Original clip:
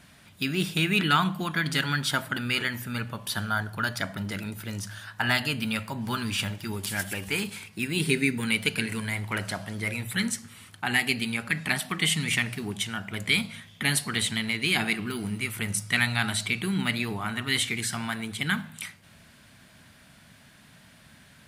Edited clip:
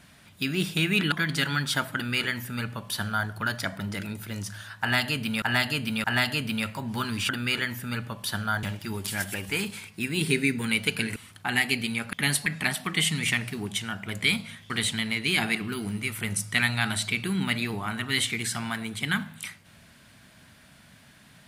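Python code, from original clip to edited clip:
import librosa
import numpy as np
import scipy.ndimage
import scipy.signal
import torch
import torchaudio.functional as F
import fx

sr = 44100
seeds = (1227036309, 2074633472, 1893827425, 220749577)

y = fx.edit(x, sr, fx.cut(start_s=1.12, length_s=0.37),
    fx.duplicate(start_s=2.32, length_s=1.34, to_s=6.42),
    fx.repeat(start_s=5.17, length_s=0.62, count=3),
    fx.cut(start_s=8.95, length_s=1.59),
    fx.move(start_s=13.75, length_s=0.33, to_s=11.51), tone=tone)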